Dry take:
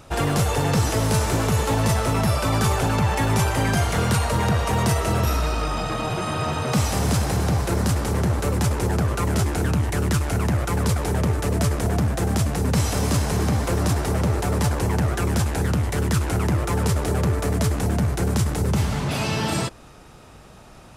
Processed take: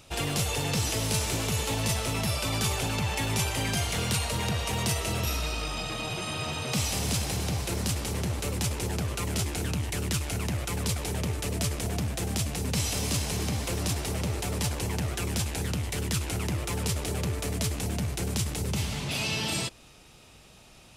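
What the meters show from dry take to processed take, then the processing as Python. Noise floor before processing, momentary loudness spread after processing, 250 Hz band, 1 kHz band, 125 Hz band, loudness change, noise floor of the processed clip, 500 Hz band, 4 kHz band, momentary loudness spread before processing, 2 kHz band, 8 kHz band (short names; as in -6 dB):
-45 dBFS, 3 LU, -9.0 dB, -10.5 dB, -9.0 dB, -7.0 dB, -53 dBFS, -9.5 dB, 0.0 dB, 2 LU, -5.0 dB, -1.0 dB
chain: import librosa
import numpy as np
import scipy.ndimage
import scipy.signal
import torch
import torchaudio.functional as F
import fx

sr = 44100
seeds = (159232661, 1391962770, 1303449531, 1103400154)

y = fx.high_shelf_res(x, sr, hz=2000.0, db=7.5, q=1.5)
y = y * 10.0 ** (-9.0 / 20.0)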